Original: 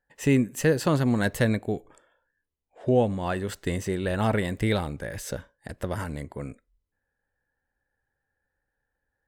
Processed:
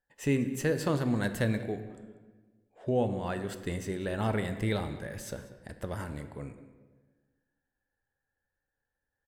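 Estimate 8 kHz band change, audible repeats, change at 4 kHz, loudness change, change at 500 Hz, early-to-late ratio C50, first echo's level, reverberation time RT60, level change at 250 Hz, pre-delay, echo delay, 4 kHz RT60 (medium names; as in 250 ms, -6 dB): -6.0 dB, 1, -6.0 dB, -6.0 dB, -6.0 dB, 10.0 dB, -19.5 dB, 1.4 s, -5.5 dB, 5 ms, 191 ms, 0.90 s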